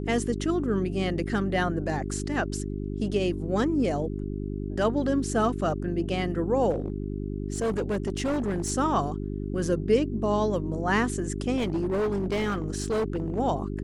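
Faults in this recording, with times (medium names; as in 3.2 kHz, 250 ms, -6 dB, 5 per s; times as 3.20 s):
hum 50 Hz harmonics 8 -32 dBFS
6.70–8.71 s: clipped -23 dBFS
11.56–13.40 s: clipped -23 dBFS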